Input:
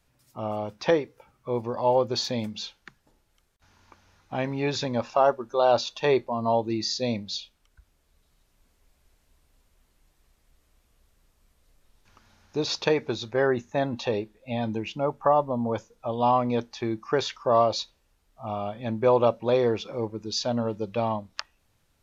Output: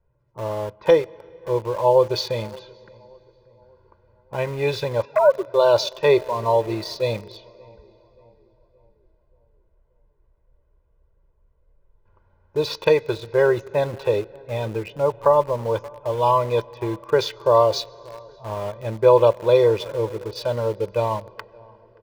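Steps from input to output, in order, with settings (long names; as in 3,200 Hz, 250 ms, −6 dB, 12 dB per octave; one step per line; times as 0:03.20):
0:05.05–0:05.54: three sine waves on the formant tracks
low-pass that shuts in the quiet parts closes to 880 Hz, open at −18 dBFS
feedback echo with a low-pass in the loop 577 ms, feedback 50%, low-pass 1,600 Hz, level −21.5 dB
on a send at −20.5 dB: convolution reverb RT60 3.7 s, pre-delay 87 ms
on the sum: dynamic equaliser 1,600 Hz, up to −3 dB, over −47 dBFS, Q 3.4
comb filter 2 ms, depth 88%
in parallel at −5 dB: centre clipping without the shift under −31 dBFS
on the sum: level −1.5 dB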